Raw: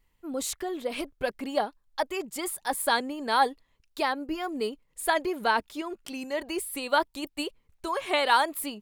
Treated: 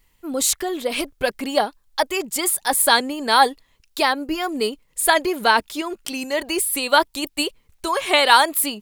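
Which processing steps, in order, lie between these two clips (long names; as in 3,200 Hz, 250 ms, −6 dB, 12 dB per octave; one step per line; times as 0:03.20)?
high-shelf EQ 2,600 Hz +7.5 dB
level +7 dB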